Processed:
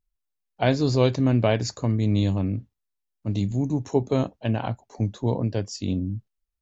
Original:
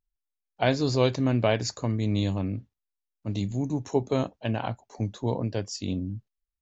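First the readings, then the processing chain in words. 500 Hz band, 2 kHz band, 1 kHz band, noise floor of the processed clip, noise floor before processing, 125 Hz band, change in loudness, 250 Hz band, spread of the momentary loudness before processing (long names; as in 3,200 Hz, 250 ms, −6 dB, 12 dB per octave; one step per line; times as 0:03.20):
+2.0 dB, 0.0 dB, +1.0 dB, −81 dBFS, below −85 dBFS, +4.5 dB, +3.5 dB, +3.5 dB, 10 LU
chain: low-shelf EQ 420 Hz +5 dB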